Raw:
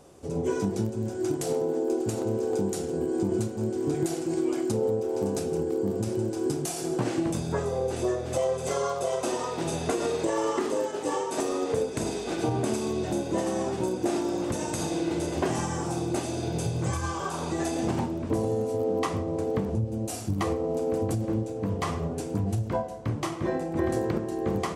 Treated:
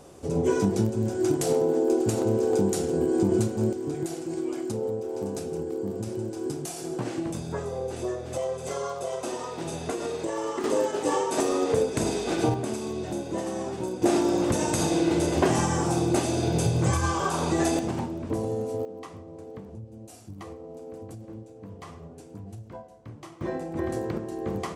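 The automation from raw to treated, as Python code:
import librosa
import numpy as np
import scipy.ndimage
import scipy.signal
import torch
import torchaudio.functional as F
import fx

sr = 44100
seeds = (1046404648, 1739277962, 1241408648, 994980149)

y = fx.gain(x, sr, db=fx.steps((0.0, 4.0), (3.73, -3.5), (10.64, 3.5), (12.54, -3.0), (14.02, 5.0), (17.79, -2.0), (18.85, -13.5), (23.41, -3.0)))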